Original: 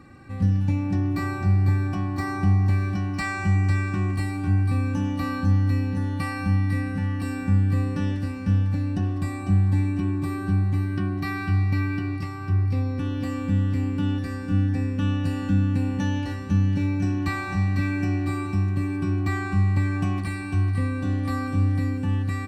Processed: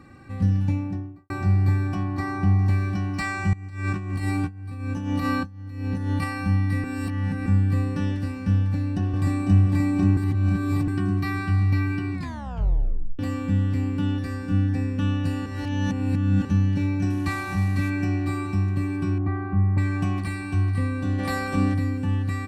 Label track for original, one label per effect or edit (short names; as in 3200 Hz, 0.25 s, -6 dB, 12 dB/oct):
0.610000	1.300000	studio fade out
2.030000	2.590000	high shelf 5300 Hz -8.5 dB
3.530000	6.240000	negative-ratio compressor -27 dBFS, ratio -0.5
6.840000	7.460000	reverse
8.600000	9.640000	echo throw 0.53 s, feedback 65%, level 0 dB
10.170000	10.880000	reverse
12.130000	12.130000	tape stop 1.06 s
15.460000	16.450000	reverse
17.100000	17.900000	CVSD 64 kbps
19.180000	19.780000	LPF 1100 Hz
21.180000	21.730000	spectral limiter ceiling under each frame's peak by 14 dB